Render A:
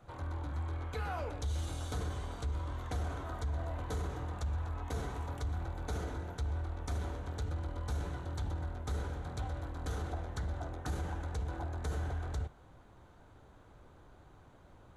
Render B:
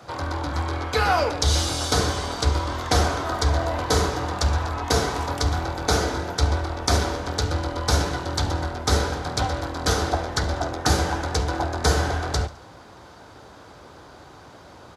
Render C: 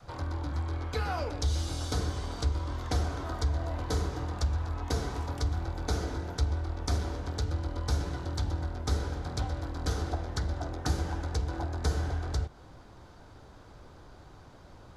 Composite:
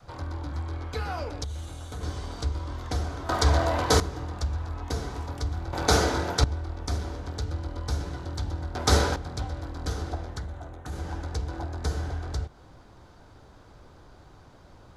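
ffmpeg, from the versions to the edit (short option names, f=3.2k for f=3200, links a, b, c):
-filter_complex "[0:a]asplit=2[a][b];[1:a]asplit=3[c][d][e];[2:a]asplit=6[f][g][h][i][j][k];[f]atrim=end=1.442[l];[a]atrim=start=1.438:end=2.032[m];[g]atrim=start=2.028:end=3.292[n];[c]atrim=start=3.288:end=4.002[o];[h]atrim=start=3.998:end=5.732[p];[d]atrim=start=5.728:end=6.442[q];[i]atrim=start=6.438:end=8.752[r];[e]atrim=start=8.748:end=9.162[s];[j]atrim=start=9.158:end=10.49[t];[b]atrim=start=10.25:end=11.13[u];[k]atrim=start=10.89[v];[l][m]acrossfade=d=0.004:c1=hsin:c2=hsin[w];[w][n]acrossfade=d=0.004:c1=hsin:c2=hsin[x];[x][o]acrossfade=d=0.004:c1=hsin:c2=hsin[y];[y][p]acrossfade=d=0.004:c1=hsin:c2=hsin[z];[z][q]acrossfade=d=0.004:c1=hsin:c2=hsin[aa];[aa][r]acrossfade=d=0.004:c1=hsin:c2=hsin[ab];[ab][s]acrossfade=d=0.004:c1=hsin:c2=hsin[ac];[ac][t]acrossfade=d=0.004:c1=hsin:c2=hsin[ad];[ad][u]acrossfade=d=0.24:c1=tri:c2=tri[ae];[ae][v]acrossfade=d=0.24:c1=tri:c2=tri"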